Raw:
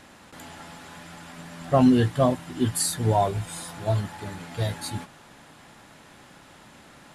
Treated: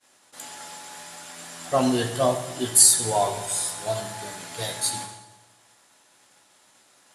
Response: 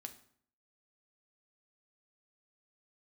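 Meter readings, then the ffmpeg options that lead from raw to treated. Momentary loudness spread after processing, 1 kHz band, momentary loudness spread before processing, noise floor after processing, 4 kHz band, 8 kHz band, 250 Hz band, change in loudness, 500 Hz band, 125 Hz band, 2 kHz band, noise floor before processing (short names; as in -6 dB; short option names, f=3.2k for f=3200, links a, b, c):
24 LU, +0.5 dB, 23 LU, -59 dBFS, +7.0 dB, +12.5 dB, -6.0 dB, +3.0 dB, 0.0 dB, -9.0 dB, +1.5 dB, -51 dBFS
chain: -filter_complex "[0:a]agate=range=-33dB:threshold=-41dB:ratio=3:detection=peak,bass=f=250:g=-15,treble=f=4k:g=12[a];[1:a]atrim=start_sample=2205,asetrate=22050,aresample=44100[b];[a][b]afir=irnorm=-1:irlink=0,volume=2dB"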